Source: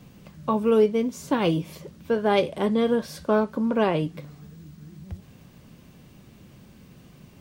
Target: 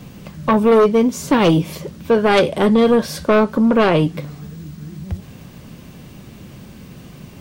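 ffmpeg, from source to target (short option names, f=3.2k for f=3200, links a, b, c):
-af "aeval=exprs='0.335*sin(PI/2*2*val(0)/0.335)':c=same,volume=1.5dB"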